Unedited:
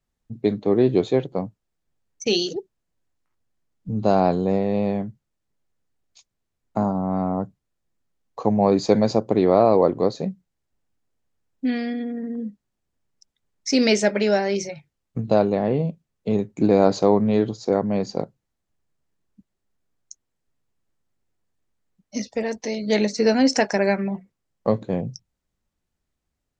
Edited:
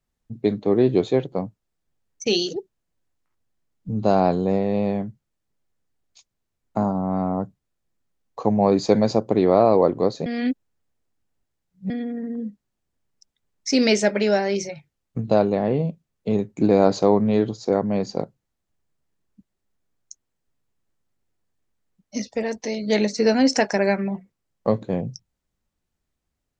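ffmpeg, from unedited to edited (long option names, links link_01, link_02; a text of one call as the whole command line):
ffmpeg -i in.wav -filter_complex "[0:a]asplit=3[link_01][link_02][link_03];[link_01]atrim=end=10.262[link_04];[link_02]atrim=start=10.258:end=11.902,asetpts=PTS-STARTPTS,areverse[link_05];[link_03]atrim=start=11.898[link_06];[link_04][link_05]acrossfade=duration=0.004:curve1=hsin:curve2=hsin[link_07];[link_07][link_06]acrossfade=duration=0.004:curve1=hsin:curve2=hsin" out.wav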